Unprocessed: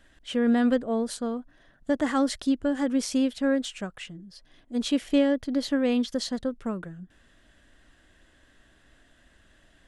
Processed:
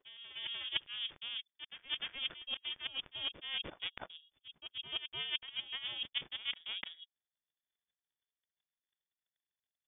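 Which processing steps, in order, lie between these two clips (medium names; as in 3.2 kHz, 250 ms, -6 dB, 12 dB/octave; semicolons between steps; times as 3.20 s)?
reverse; compression 12:1, threshold -36 dBFS, peak gain reduction 19 dB; reverse; power-law waveshaper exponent 3; reverse echo 300 ms -9.5 dB; frequency inversion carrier 3.5 kHz; trim +11.5 dB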